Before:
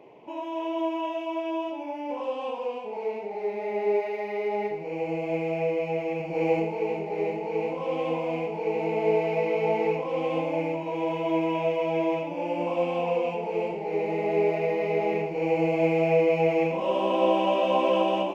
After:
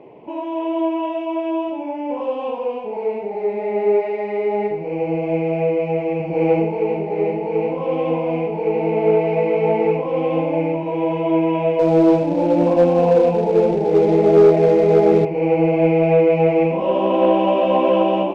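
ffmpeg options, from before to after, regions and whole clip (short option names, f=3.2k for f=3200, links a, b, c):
-filter_complex "[0:a]asettb=1/sr,asplit=3[a][b][c];[a]atrim=end=11.794[d];[b]atrim=start=11.79:end=15.25,asetpts=PTS-STARTPTS,afade=t=in:d=0.004:c=qsin,afade=t=out:st=3.456:d=0.004:c=qsin,tiltshelf=f=1.1k:g=7,acrusher=bits=4:mode=log:mix=0:aa=0.000001,asplit=2[e][f];[f]adelay=27,volume=-13dB[g];[e][g]amix=inputs=2:normalize=0,atrim=end_sample=152586[h];[c]atrim=start=15.246[i];[d][h]acrossfade=d=0.004:c1=hsin:c2=qsin[j];[j][i]acrossfade=d=0.004:c1=qsin:c2=hsin,lowpass=3.6k,tiltshelf=f=640:g=4,acontrast=81"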